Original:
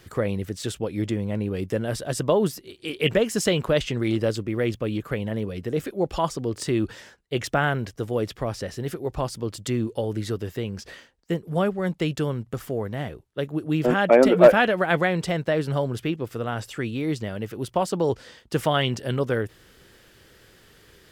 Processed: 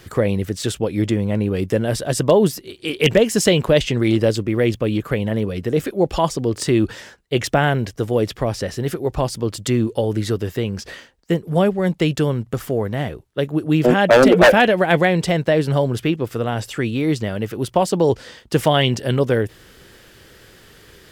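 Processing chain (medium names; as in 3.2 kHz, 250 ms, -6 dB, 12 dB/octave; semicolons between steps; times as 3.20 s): dynamic bell 1.3 kHz, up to -7 dB, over -41 dBFS, Q 2.6; wavefolder -10.5 dBFS; trim +7 dB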